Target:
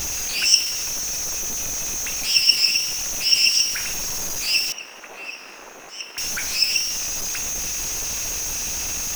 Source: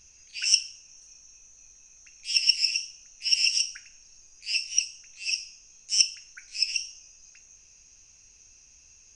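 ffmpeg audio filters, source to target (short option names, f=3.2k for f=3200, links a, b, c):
-filter_complex "[0:a]aeval=exprs='val(0)+0.5*0.0562*sgn(val(0))':c=same,asettb=1/sr,asplit=3[a][b][c];[a]atrim=end=4.724[d];[b]atrim=start=4.72:end=6.18,asetpts=PTS-STARTPTS,afade=t=in:d=0.004:c=qsin,afade=t=out:st=1.456:d=0.004:c=qsin,acrossover=split=260 2200:gain=0.0794 1 0.0794[e][f][g];[e][f][g]amix=inputs=3:normalize=0[h];[c]atrim=start=6.176[i];[d][h]acrossfade=d=0.004:c1=hsin:c2=qsin[j];[j][i]acrossfade=d=0.004:c1=qsin:c2=hsin,volume=4dB"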